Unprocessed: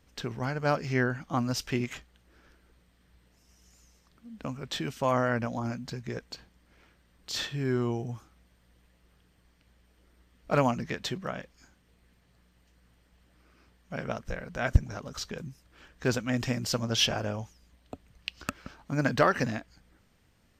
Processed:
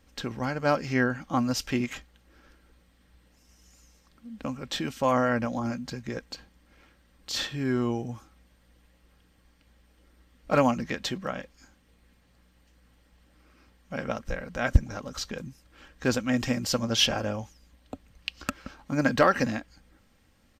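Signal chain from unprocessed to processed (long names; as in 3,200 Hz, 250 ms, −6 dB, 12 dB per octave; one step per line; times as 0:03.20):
comb filter 3.7 ms, depth 35%
level +2 dB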